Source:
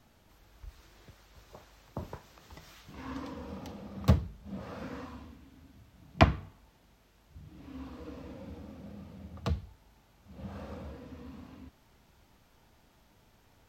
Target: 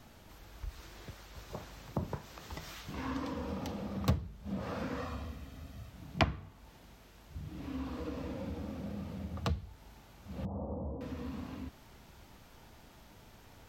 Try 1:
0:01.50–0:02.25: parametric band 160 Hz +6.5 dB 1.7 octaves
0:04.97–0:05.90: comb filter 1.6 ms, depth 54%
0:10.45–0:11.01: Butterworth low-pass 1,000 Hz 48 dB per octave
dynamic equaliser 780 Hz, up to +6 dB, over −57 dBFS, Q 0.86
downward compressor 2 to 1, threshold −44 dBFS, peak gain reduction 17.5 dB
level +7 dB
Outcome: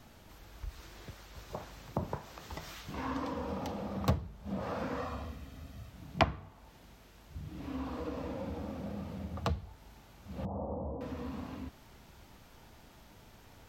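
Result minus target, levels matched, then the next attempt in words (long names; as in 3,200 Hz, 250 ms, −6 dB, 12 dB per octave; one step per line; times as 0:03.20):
1,000 Hz band +3.0 dB
0:01.50–0:02.25: parametric band 160 Hz +6.5 dB 1.7 octaves
0:04.97–0:05.90: comb filter 1.6 ms, depth 54%
0:10.45–0:11.01: Butterworth low-pass 1,000 Hz 48 dB per octave
downward compressor 2 to 1, threshold −44 dBFS, peak gain reduction 16 dB
level +7 dB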